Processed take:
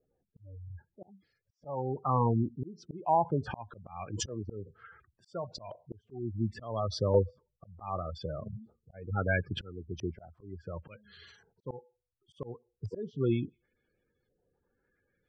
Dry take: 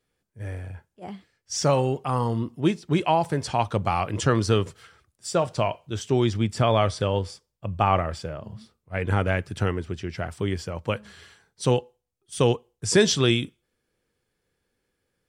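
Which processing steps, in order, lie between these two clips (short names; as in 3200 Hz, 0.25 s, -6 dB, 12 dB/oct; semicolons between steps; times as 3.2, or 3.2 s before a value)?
spectral gate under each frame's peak -15 dB strong; auto swell 0.628 s; LFO low-pass saw up 0.7 Hz 560–6500 Hz; gain -1.5 dB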